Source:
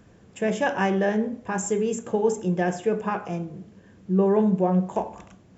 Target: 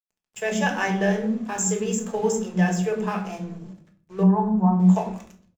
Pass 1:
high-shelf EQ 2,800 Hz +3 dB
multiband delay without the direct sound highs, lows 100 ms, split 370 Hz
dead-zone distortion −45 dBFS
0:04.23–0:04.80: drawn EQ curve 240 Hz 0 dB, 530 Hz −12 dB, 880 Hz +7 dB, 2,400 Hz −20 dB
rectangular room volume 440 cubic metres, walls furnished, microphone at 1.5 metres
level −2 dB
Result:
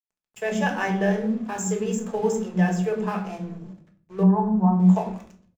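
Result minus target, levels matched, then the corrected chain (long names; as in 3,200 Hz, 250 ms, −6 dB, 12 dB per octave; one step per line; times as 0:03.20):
4,000 Hz band −3.5 dB
high-shelf EQ 2,800 Hz +10 dB
multiband delay without the direct sound highs, lows 100 ms, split 370 Hz
dead-zone distortion −45 dBFS
0:04.23–0:04.80: drawn EQ curve 240 Hz 0 dB, 530 Hz −12 dB, 880 Hz +7 dB, 2,400 Hz −20 dB
rectangular room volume 440 cubic metres, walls furnished, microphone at 1.5 metres
level −2 dB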